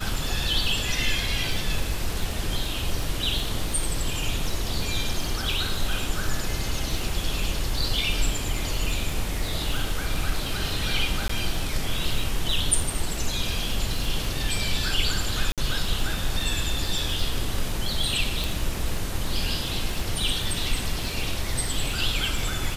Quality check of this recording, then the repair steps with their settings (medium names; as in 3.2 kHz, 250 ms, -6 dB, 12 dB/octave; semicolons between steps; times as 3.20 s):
crackle 24 per s -28 dBFS
11.28–11.29 s: dropout 14 ms
15.52–15.58 s: dropout 57 ms
18.44 s: pop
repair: de-click; interpolate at 11.28 s, 14 ms; interpolate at 15.52 s, 57 ms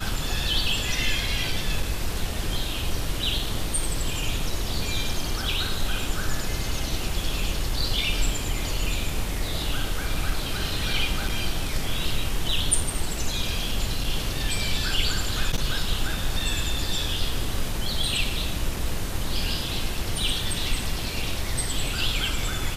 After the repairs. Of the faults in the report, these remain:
nothing left